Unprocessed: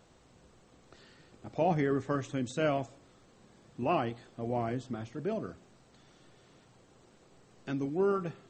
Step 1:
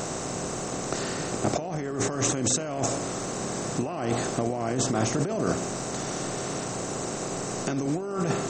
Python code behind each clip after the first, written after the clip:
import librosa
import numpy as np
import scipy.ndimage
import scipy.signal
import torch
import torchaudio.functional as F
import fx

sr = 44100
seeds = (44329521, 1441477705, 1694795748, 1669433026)

y = fx.bin_compress(x, sr, power=0.6)
y = fx.high_shelf_res(y, sr, hz=4400.0, db=10.0, q=1.5)
y = fx.over_compress(y, sr, threshold_db=-35.0, ratio=-1.0)
y = y * 10.0 ** (8.0 / 20.0)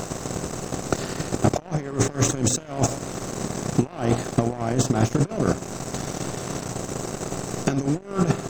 y = fx.low_shelf(x, sr, hz=140.0, db=9.5)
y = fx.transient(y, sr, attack_db=10, sustain_db=-10)
y = fx.leveller(y, sr, passes=2)
y = y * 10.0 ** (-7.5 / 20.0)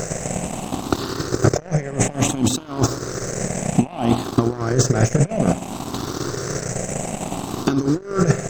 y = fx.spec_ripple(x, sr, per_octave=0.54, drift_hz=0.6, depth_db=11)
y = y * 10.0 ** (2.5 / 20.0)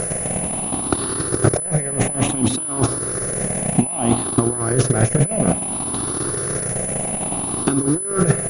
y = fx.pwm(x, sr, carrier_hz=10000.0)